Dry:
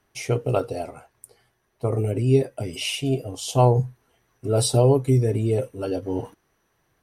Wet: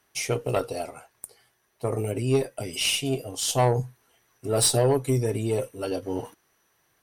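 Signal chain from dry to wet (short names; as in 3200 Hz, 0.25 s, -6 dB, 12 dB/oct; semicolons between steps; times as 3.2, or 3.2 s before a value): tilt +2 dB/oct; tube stage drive 14 dB, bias 0.35; gain +1 dB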